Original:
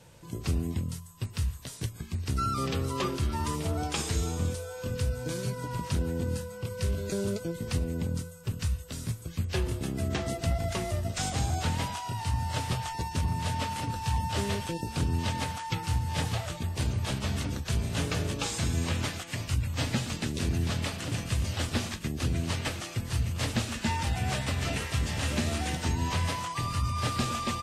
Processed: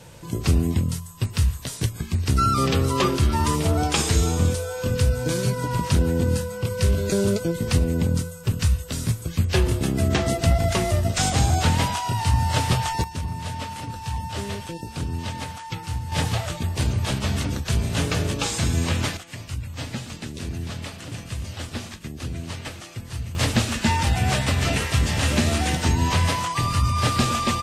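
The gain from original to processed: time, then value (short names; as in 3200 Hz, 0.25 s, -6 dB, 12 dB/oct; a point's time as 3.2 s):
+9.5 dB
from 13.04 s 0 dB
from 16.12 s +6.5 dB
from 19.17 s -2 dB
from 23.35 s +8.5 dB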